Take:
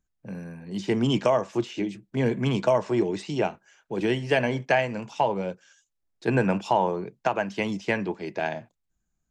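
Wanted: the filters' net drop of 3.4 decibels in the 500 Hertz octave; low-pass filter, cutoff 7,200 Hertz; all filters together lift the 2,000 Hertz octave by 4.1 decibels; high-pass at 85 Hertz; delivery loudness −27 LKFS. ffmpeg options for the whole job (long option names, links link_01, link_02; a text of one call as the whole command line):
ffmpeg -i in.wav -af "highpass=85,lowpass=7200,equalizer=frequency=500:width_type=o:gain=-5,equalizer=frequency=2000:width_type=o:gain=5.5" out.wav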